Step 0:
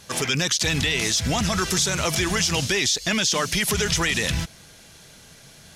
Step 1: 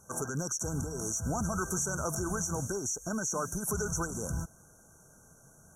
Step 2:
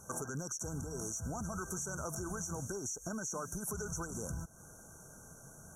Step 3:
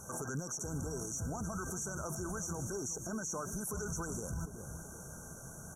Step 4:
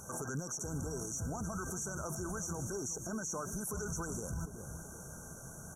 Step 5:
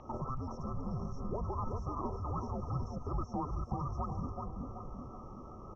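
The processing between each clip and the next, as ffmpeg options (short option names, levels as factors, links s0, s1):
-af "afftfilt=real='re*(1-between(b*sr/4096,1600,5600))':imag='im*(1-between(b*sr/4096,1600,5600))':win_size=4096:overlap=0.75,volume=0.376"
-af "acompressor=threshold=0.00708:ratio=4,volume=1.58"
-filter_complex "[0:a]asplit=2[s0][s1];[s1]adelay=377,lowpass=f=970:p=1,volume=0.237,asplit=2[s2][s3];[s3]adelay=377,lowpass=f=970:p=1,volume=0.52,asplit=2[s4][s5];[s5]adelay=377,lowpass=f=970:p=1,volume=0.52,asplit=2[s6][s7];[s7]adelay=377,lowpass=f=970:p=1,volume=0.52,asplit=2[s8][s9];[s9]adelay=377,lowpass=f=970:p=1,volume=0.52[s10];[s0][s2][s4][s6][s8][s10]amix=inputs=6:normalize=0,alimiter=level_in=3.76:limit=0.0631:level=0:latency=1:release=31,volume=0.266,volume=1.78"
-af "acompressor=mode=upward:threshold=0.00112:ratio=2.5"
-filter_complex "[0:a]asplit=2[s0][s1];[s1]adelay=381,lowpass=f=1500:p=1,volume=0.631,asplit=2[s2][s3];[s3]adelay=381,lowpass=f=1500:p=1,volume=0.49,asplit=2[s4][s5];[s5]adelay=381,lowpass=f=1500:p=1,volume=0.49,asplit=2[s6][s7];[s7]adelay=381,lowpass=f=1500:p=1,volume=0.49,asplit=2[s8][s9];[s9]adelay=381,lowpass=f=1500:p=1,volume=0.49,asplit=2[s10][s11];[s11]adelay=381,lowpass=f=1500:p=1,volume=0.49[s12];[s0][s2][s4][s6][s8][s10][s12]amix=inputs=7:normalize=0,highpass=f=190:t=q:w=0.5412,highpass=f=190:t=q:w=1.307,lowpass=f=3600:t=q:w=0.5176,lowpass=f=3600:t=q:w=0.7071,lowpass=f=3600:t=q:w=1.932,afreqshift=-270,volume=1.68"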